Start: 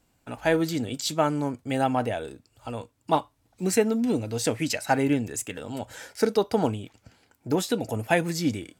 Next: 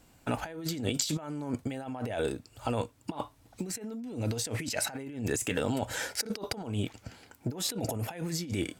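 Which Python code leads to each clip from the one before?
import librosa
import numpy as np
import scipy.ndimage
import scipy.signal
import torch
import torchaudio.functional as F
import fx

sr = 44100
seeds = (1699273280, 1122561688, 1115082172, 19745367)

y = fx.over_compress(x, sr, threshold_db=-35.0, ratio=-1.0)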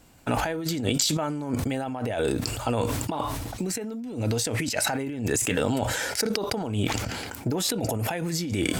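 y = fx.sustainer(x, sr, db_per_s=27.0)
y = y * librosa.db_to_amplitude(4.5)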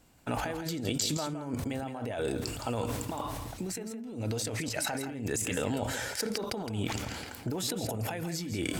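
y = x + 10.0 ** (-9.5 / 20.0) * np.pad(x, (int(165 * sr / 1000.0), 0))[:len(x)]
y = y * librosa.db_to_amplitude(-7.0)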